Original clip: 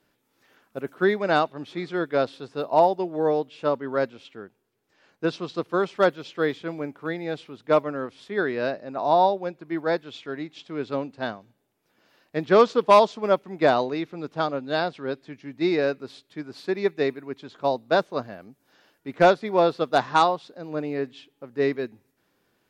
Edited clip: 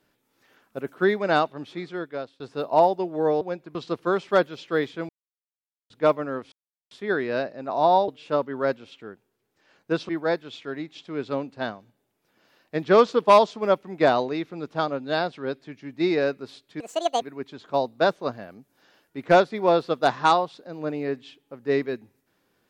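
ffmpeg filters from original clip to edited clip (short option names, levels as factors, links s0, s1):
-filter_complex "[0:a]asplit=11[s0][s1][s2][s3][s4][s5][s6][s7][s8][s9][s10];[s0]atrim=end=2.4,asetpts=PTS-STARTPTS,afade=t=out:st=1.57:d=0.83:silence=0.0891251[s11];[s1]atrim=start=2.4:end=3.412,asetpts=PTS-STARTPTS,afade=t=in:d=0.004:c=hsin:silence=0.0891251[s12];[s2]atrim=start=9.358:end=9.702[s13];[s3]atrim=start=5.418:end=6.76,asetpts=PTS-STARTPTS,afade=t=out:st=1.338:d=0.004:c=hsin[s14];[s4]atrim=start=6.76:end=7.57,asetpts=PTS-STARTPTS,volume=0[s15];[s5]atrim=start=7.57:end=8.19,asetpts=PTS-STARTPTS,afade=t=in:d=0.004:c=hsin,afade=t=out:st=0.616:d=0.004:c=hsin,apad=pad_dur=0.39[s16];[s6]atrim=start=8.19:end=9.362,asetpts=PTS-STARTPTS,afade=t=in:d=0.004:c=hsin[s17];[s7]atrim=start=3.408:end=5.422[s18];[s8]atrim=start=9.698:end=16.414[s19];[s9]atrim=start=16.41:end=17.12,asetpts=PTS-STARTPTS,asetrate=75411,aresample=44100[s20];[s10]atrim=start=17.116[s21];[s11][s12]concat=n=2:v=0:a=1[s22];[s22][s13]acrossfade=d=0.004:c1=hsin:c2=hsin[s23];[s14][s15][s16][s17]concat=n=4:v=0:a=1[s24];[s23][s24]acrossfade=d=0.004:c1=hsin:c2=hsin[s25];[s25][s18]acrossfade=d=0.004:c1=hsin:c2=hsin[s26];[s26][s19]acrossfade=d=0.004:c1=hsin:c2=hsin[s27];[s27][s20]acrossfade=d=0.004:c1=hsin:c2=hsin[s28];[s28][s21]acrossfade=d=0.004:c1=hsin:c2=hsin"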